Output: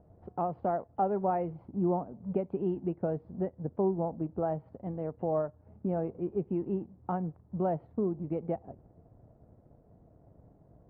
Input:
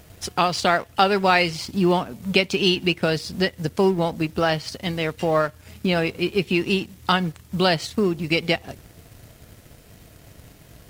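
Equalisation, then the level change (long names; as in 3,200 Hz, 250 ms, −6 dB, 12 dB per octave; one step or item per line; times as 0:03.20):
transistor ladder low-pass 960 Hz, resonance 35%
high-frequency loss of the air 81 metres
parametric band 200 Hz +4 dB 2.3 octaves
−6.0 dB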